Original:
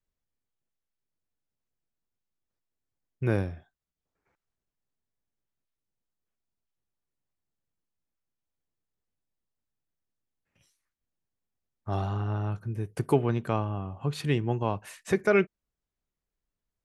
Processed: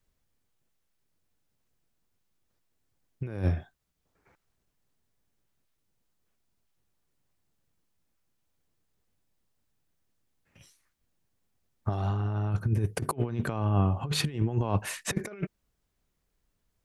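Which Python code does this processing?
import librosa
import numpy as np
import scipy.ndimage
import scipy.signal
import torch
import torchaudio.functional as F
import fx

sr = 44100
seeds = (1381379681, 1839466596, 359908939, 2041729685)

y = fx.peak_eq(x, sr, hz=100.0, db=2.5, octaves=2.4)
y = fx.over_compress(y, sr, threshold_db=-31.0, ratio=-0.5)
y = y * 10.0 ** (4.0 / 20.0)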